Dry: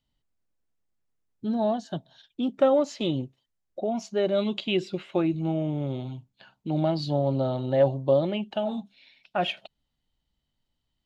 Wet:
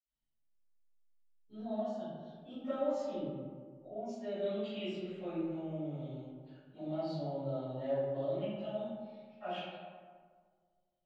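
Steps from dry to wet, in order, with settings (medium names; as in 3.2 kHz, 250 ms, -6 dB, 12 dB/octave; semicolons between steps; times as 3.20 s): 2.97–4.01 s: low-pass 1.3 kHz 6 dB/octave; reverberation RT60 1.7 s, pre-delay 48 ms, DRR -60 dB; trim +1.5 dB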